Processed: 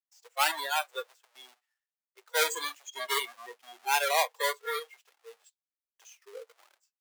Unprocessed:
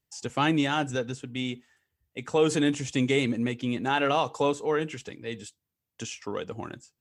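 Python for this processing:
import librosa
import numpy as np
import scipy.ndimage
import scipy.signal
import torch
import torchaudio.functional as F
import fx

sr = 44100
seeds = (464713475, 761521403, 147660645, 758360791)

y = fx.halfwave_hold(x, sr)
y = scipy.signal.sosfilt(scipy.signal.bessel(8, 910.0, 'highpass', norm='mag', fs=sr, output='sos'), y)
y = fx.noise_reduce_blind(y, sr, reduce_db=22)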